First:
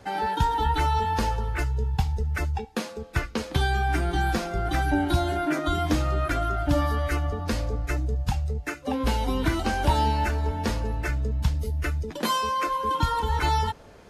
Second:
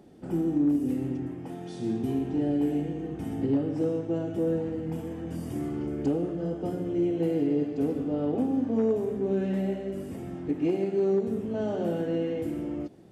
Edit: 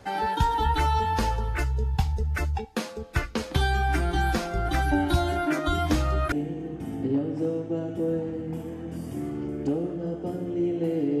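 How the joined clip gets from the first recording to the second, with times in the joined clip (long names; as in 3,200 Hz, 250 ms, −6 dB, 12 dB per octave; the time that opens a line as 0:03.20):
first
0:06.32: continue with second from 0:02.71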